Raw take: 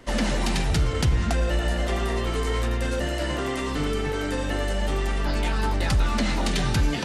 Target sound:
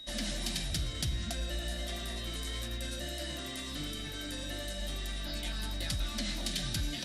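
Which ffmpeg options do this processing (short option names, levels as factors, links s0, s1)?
-af "flanger=delay=8.5:depth=9.7:regen=-83:speed=1.5:shape=triangular,superequalizer=7b=0.316:9b=0.355:10b=0.562:13b=1.78:14b=1.58,aeval=exprs='val(0)+0.01*sin(2*PI*3800*n/s)':c=same,aemphasis=mode=production:type=50fm,volume=0.376"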